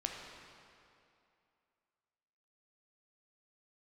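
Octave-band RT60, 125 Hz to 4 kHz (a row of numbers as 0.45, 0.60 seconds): 2.3, 2.5, 2.6, 2.6, 2.3, 2.0 seconds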